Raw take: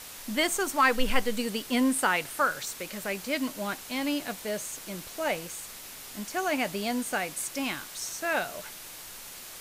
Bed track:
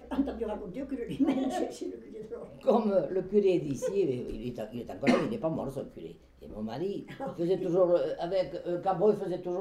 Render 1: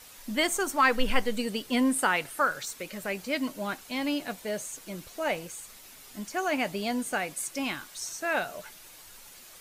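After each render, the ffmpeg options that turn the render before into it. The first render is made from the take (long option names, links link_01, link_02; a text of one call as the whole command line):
ffmpeg -i in.wav -af "afftdn=noise_reduction=8:noise_floor=-44" out.wav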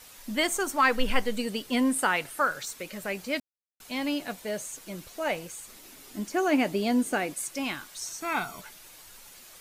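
ffmpeg -i in.wav -filter_complex "[0:a]asettb=1/sr,asplit=3[link_01][link_02][link_03];[link_01]atrim=end=5.674[link_04];[link_02]atrim=start=5.67:end=7.34,asetpts=PTS-STARTPTS,afade=type=in:duration=0.004:curve=qsin,afade=type=out:start_time=1.666:duration=0.004:curve=qsin,equalizer=frequency=310:width_type=o:width=1.1:gain=9.5[link_05];[link_03]atrim=start=7.336[link_06];[link_04][link_05]acrossfade=duration=0.004:curve1=hsin:curve2=qsin[link_07];[link_07][link_06]acrossfade=duration=0.004:curve1=qsin:curve2=hsin,asettb=1/sr,asplit=3[link_08][link_09][link_10];[link_08]atrim=end=8.214[link_11];[link_09]atrim=start=8.21:end=8.61,asetpts=PTS-STARTPTS,afade=type=in:duration=0.004:curve=qsin,afade=type=out:start_time=0.396:duration=0.004:curve=qsin,aecho=1:1:0.9:0.89,atrim=end_sample=17640[link_12];[link_10]atrim=start=8.606[link_13];[link_11][link_12]acrossfade=duration=0.004:curve1=hsin:curve2=qsin[link_14];[link_14][link_13]acrossfade=duration=0.004:curve1=qsin:curve2=hsin,asplit=3[link_15][link_16][link_17];[link_15]atrim=end=3.4,asetpts=PTS-STARTPTS,afade=type=out:start_time=3.396:duration=0.004:curve=hsin[link_18];[link_16]atrim=start=3.4:end=3.8,asetpts=PTS-STARTPTS,volume=0[link_19];[link_17]atrim=start=3.8,asetpts=PTS-STARTPTS,afade=type=in:duration=0.004:curve=hsin[link_20];[link_18][link_19][link_20]concat=n=3:v=0:a=1" out.wav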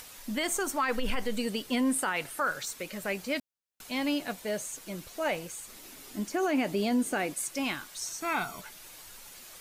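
ffmpeg -i in.wav -af "alimiter=limit=-20dB:level=0:latency=1:release=40,acompressor=mode=upward:threshold=-44dB:ratio=2.5" out.wav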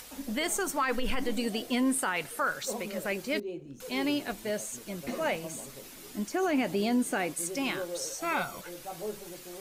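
ffmpeg -i in.wav -i bed.wav -filter_complex "[1:a]volume=-12.5dB[link_01];[0:a][link_01]amix=inputs=2:normalize=0" out.wav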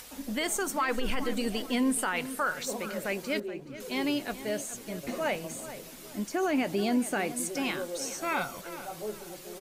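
ffmpeg -i in.wav -filter_complex "[0:a]asplit=2[link_01][link_02];[link_02]adelay=426,lowpass=frequency=2900:poles=1,volume=-13dB,asplit=2[link_03][link_04];[link_04]adelay=426,lowpass=frequency=2900:poles=1,volume=0.35,asplit=2[link_05][link_06];[link_06]adelay=426,lowpass=frequency=2900:poles=1,volume=0.35[link_07];[link_01][link_03][link_05][link_07]amix=inputs=4:normalize=0" out.wav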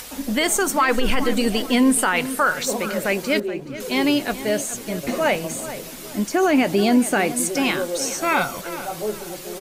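ffmpeg -i in.wav -af "volume=10.5dB" out.wav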